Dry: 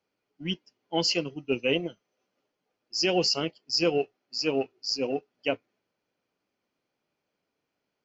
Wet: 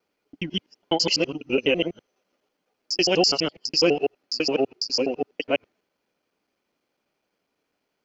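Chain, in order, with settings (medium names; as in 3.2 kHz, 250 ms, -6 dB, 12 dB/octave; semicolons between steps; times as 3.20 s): time reversed locally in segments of 83 ms; peaking EQ 120 Hz -6.5 dB 0.76 oct; trim +5 dB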